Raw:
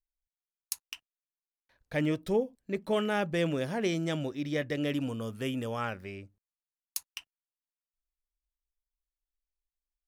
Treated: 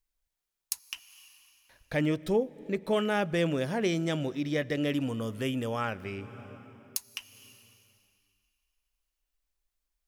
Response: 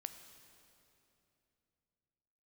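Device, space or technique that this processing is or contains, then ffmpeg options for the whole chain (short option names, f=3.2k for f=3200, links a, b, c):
ducked reverb: -filter_complex "[0:a]asplit=3[a][b][c];[1:a]atrim=start_sample=2205[d];[b][d]afir=irnorm=-1:irlink=0[e];[c]apad=whole_len=444139[f];[e][f]sidechaincompress=threshold=-47dB:ratio=5:attack=20:release=292,volume=7.5dB[g];[a][g]amix=inputs=2:normalize=0"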